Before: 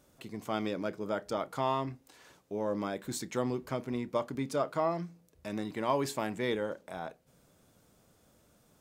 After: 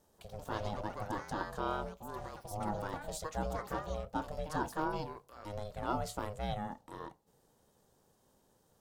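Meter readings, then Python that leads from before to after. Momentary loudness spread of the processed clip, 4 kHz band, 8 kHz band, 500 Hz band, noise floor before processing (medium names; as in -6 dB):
9 LU, -5.5 dB, -4.5 dB, -7.0 dB, -67 dBFS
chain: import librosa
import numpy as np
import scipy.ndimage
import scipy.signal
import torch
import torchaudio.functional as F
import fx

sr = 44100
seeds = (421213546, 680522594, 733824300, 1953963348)

y = fx.echo_pitch(x, sr, ms=138, semitones=5, count=2, db_per_echo=-6.0)
y = fx.peak_eq(y, sr, hz=2100.0, db=-11.5, octaves=0.52)
y = y * np.sin(2.0 * np.pi * 310.0 * np.arange(len(y)) / sr)
y = y * librosa.db_to_amplitude(-2.0)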